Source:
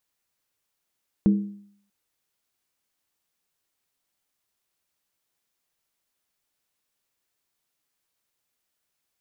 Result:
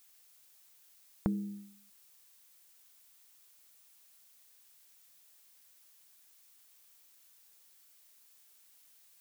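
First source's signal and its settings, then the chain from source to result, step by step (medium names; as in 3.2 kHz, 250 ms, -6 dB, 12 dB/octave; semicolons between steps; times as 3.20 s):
skin hit length 0.64 s, lowest mode 202 Hz, decay 0.62 s, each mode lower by 10 dB, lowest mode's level -12.5 dB
compression, threshold -30 dBFS; added noise blue -63 dBFS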